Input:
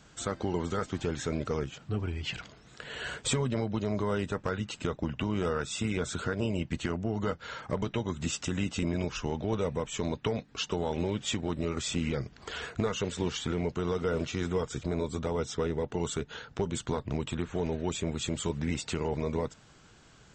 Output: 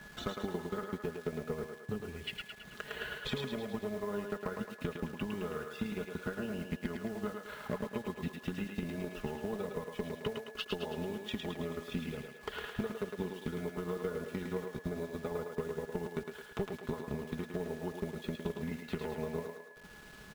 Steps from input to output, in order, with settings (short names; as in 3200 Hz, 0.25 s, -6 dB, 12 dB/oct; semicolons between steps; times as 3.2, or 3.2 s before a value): LPF 4400 Hz 24 dB/oct; high shelf 2100 Hz -5.5 dB; comb 4.8 ms, depth 69%; transient shaper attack +8 dB, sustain -10 dB; compressor 2.5:1, threshold -44 dBFS, peak gain reduction 18 dB; added harmonics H 3 -23 dB, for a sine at -29.5 dBFS; requantised 10-bit, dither none; whine 1700 Hz -54 dBFS; on a send: thinning echo 0.108 s, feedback 55%, high-pass 320 Hz, level -4 dB; on the sum: gain +3 dB